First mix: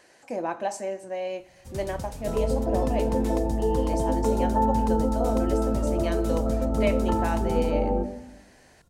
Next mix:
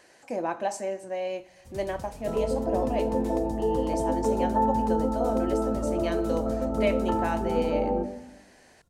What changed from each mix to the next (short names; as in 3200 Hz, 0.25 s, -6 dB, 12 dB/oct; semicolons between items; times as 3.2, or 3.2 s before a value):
first sound -6.5 dB; second sound: add low shelf 100 Hz -10.5 dB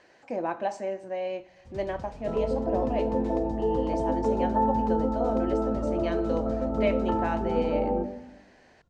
master: add air absorption 140 m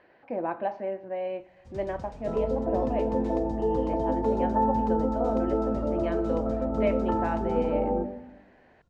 speech: add Gaussian blur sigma 2.8 samples